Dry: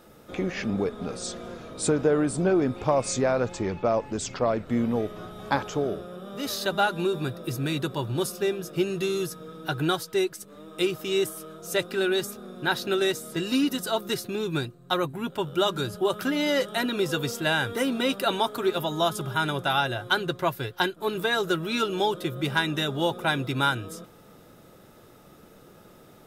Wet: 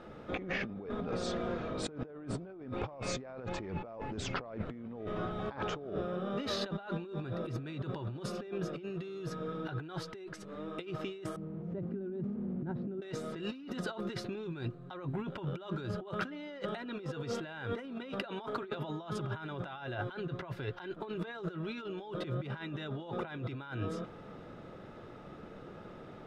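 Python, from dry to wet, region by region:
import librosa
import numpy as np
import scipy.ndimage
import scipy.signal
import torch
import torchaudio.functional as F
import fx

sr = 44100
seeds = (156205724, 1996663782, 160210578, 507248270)

y = fx.chain(x, sr, fx.delta_mod(bps=64000, step_db=-35.5),
    fx.bandpass_q(hz=180.0, q=1.6),
    fx.tilt_eq(slope=-2.0), at=(11.36, 13.02))
y = scipy.signal.sosfilt(scipy.signal.butter(2, 2700.0, 'lowpass', fs=sr, output='sos'), y)
y = fx.over_compress(y, sr, threshold_db=-36.0, ratio=-1.0)
y = y * 10.0 ** (-4.0 / 20.0)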